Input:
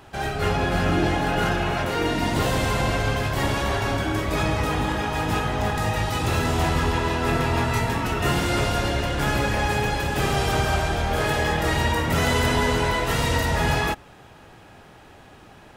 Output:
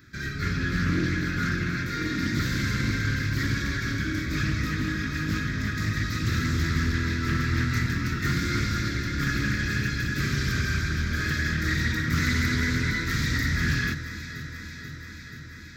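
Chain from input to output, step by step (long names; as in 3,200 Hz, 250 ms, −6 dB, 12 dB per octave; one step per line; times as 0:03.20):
high-pass filter 78 Hz 6 dB per octave
flat-topped bell 680 Hz −15.5 dB
phaser with its sweep stopped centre 2,900 Hz, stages 6
delay that swaps between a low-pass and a high-pass 242 ms, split 1,600 Hz, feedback 86%, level −11 dB
highs frequency-modulated by the lows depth 0.22 ms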